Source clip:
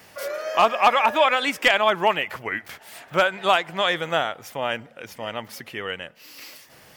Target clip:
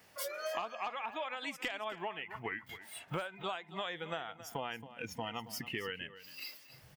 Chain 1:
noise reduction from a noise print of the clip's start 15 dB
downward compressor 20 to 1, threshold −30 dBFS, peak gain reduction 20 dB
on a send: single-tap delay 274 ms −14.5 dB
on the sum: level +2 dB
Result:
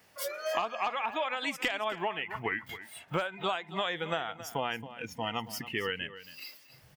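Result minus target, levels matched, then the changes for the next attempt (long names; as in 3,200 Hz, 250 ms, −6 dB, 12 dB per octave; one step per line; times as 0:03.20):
downward compressor: peak gain reduction −7 dB
change: downward compressor 20 to 1, threshold −37.5 dBFS, peak gain reduction 27 dB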